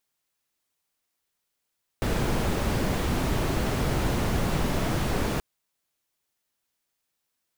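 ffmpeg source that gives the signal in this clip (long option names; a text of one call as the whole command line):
ffmpeg -f lavfi -i "anoisesrc=color=brown:amplitude=0.263:duration=3.38:sample_rate=44100:seed=1" out.wav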